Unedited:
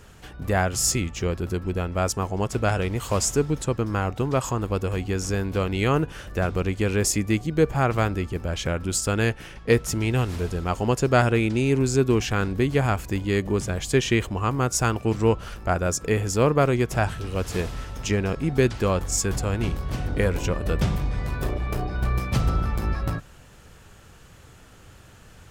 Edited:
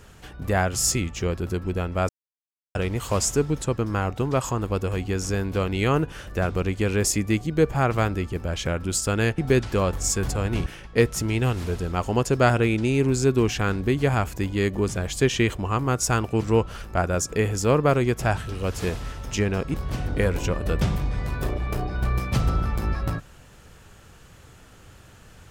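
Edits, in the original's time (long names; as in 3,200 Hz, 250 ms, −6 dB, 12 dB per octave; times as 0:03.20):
0:02.09–0:02.75: silence
0:18.46–0:19.74: move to 0:09.38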